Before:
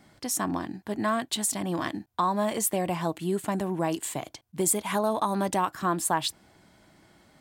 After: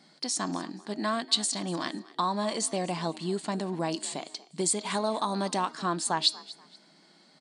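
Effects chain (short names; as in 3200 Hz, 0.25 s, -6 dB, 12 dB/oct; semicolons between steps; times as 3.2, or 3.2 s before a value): bell 4400 Hz +14 dB 0.54 oct; FFT band-pass 150–9900 Hz; de-hum 312.3 Hz, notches 24; on a send: frequency-shifting echo 0.239 s, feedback 31%, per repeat +47 Hz, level -20 dB; on the sum: gain -3 dB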